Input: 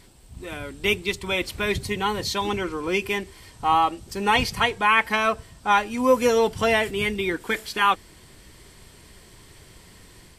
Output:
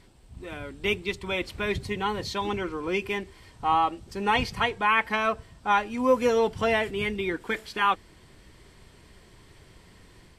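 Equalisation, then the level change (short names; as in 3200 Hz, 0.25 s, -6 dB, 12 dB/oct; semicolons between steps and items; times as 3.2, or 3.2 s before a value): LPF 3400 Hz 6 dB/oct; -3.0 dB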